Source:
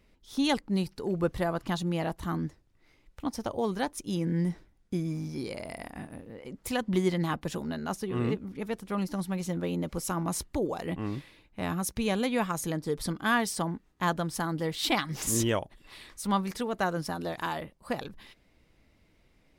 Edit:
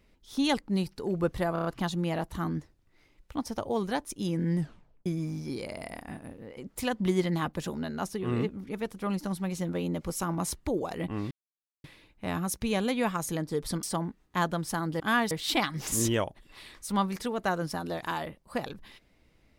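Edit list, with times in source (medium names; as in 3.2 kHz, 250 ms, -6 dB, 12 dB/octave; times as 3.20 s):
1.53 s: stutter 0.03 s, 5 plays
4.46 s: tape stop 0.48 s
11.19 s: insert silence 0.53 s
13.18–13.49 s: move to 14.66 s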